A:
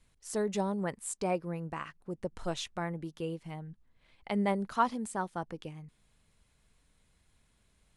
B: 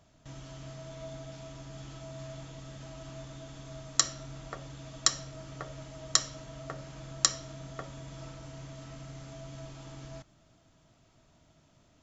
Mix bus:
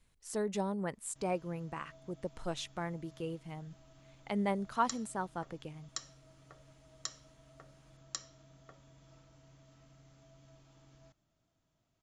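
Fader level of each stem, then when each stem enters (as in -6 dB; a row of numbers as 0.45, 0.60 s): -3.0, -16.0 dB; 0.00, 0.90 s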